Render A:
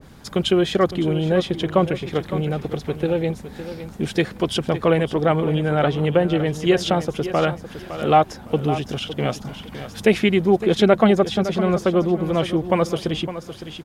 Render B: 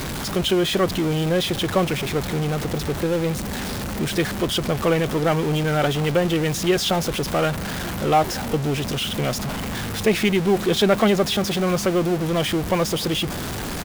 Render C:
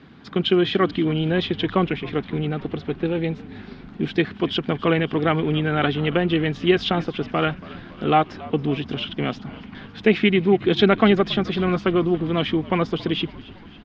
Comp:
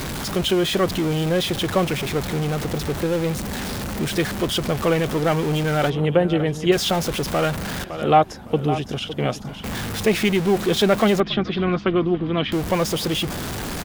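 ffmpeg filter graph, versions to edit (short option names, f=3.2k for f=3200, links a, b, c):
-filter_complex "[0:a]asplit=2[a][b];[1:a]asplit=4[c][d][e][f];[c]atrim=end=5.902[g];[a]atrim=start=5.898:end=6.722[h];[d]atrim=start=6.718:end=7.842[i];[b]atrim=start=7.838:end=9.642[j];[e]atrim=start=9.638:end=11.202[k];[2:a]atrim=start=11.198:end=12.522[l];[f]atrim=start=12.518[m];[g][h]acrossfade=d=0.004:c1=hsin:c2=hsin[n];[n][i]acrossfade=d=0.004:c1=hsin:c2=hsin[o];[o][j]acrossfade=d=0.004:c1=hsin:c2=hsin[p];[p][k]acrossfade=d=0.004:c1=hsin:c2=hsin[q];[q][l]acrossfade=d=0.004:c1=hsin:c2=hsin[r];[r][m]acrossfade=d=0.004:c1=hsin:c2=hsin"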